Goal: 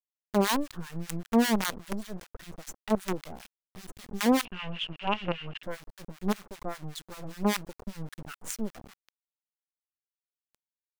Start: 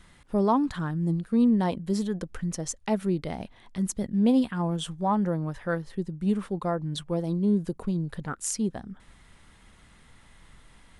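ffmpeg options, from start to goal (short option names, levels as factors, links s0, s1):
-filter_complex "[0:a]acrusher=bits=4:dc=4:mix=0:aa=0.000001,acrossover=split=1100[s0][s1];[s0]aeval=exprs='val(0)*(1-1/2+1/2*cos(2*PI*5.1*n/s))':c=same[s2];[s1]aeval=exprs='val(0)*(1-1/2-1/2*cos(2*PI*5.1*n/s))':c=same[s3];[s2][s3]amix=inputs=2:normalize=0,asettb=1/sr,asplit=3[s4][s5][s6];[s4]atrim=end=4.454[s7];[s5]atrim=start=4.45:end=5.63,asetpts=PTS-STARTPTS,afade=t=in:d=0.004:c=qsin,afade=t=out:st=1.176:d=0.004:c=qsin,lowpass=f=2800:t=q:w=14[s8];[s6]atrim=start=5.626[s9];[s7][s8]acrossfade=d=0.004:c1=hsin:c2=qsin[s10];[s10][s9]acrossfade=d=0.004:c1=qsin:c2=hsin"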